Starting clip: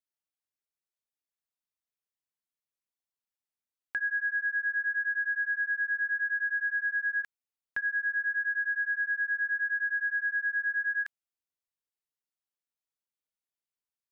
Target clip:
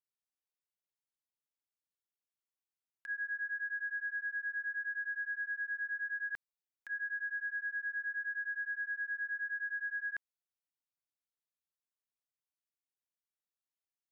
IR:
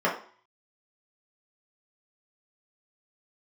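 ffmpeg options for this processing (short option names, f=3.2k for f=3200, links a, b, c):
-af "areverse,volume=-8dB"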